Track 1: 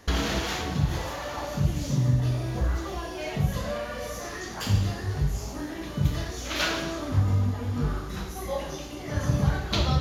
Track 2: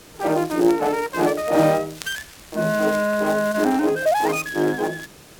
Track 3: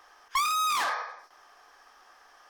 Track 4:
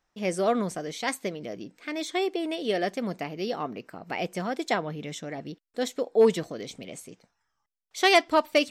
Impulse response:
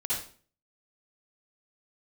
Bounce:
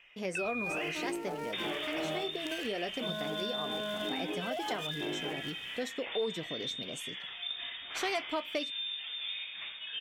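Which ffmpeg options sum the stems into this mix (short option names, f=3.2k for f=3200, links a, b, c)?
-filter_complex "[0:a]equalizer=f=1.4k:t=o:w=2.9:g=10,adelay=1450,volume=-12dB[a];[1:a]adelay=450,volume=-12dB[b];[2:a]volume=-3dB[c];[3:a]flanger=delay=6:depth=2.6:regen=-59:speed=0.95:shape=triangular,volume=2.5dB[d];[b][d]amix=inputs=2:normalize=0,acompressor=threshold=-34dB:ratio=1.5,volume=0dB[e];[a][c]amix=inputs=2:normalize=0,lowpass=f=3.1k:t=q:w=0.5098,lowpass=f=3.1k:t=q:w=0.6013,lowpass=f=3.1k:t=q:w=0.9,lowpass=f=3.1k:t=q:w=2.563,afreqshift=-3700,acompressor=threshold=-33dB:ratio=2,volume=0dB[f];[e][f]amix=inputs=2:normalize=0,acompressor=threshold=-35dB:ratio=2"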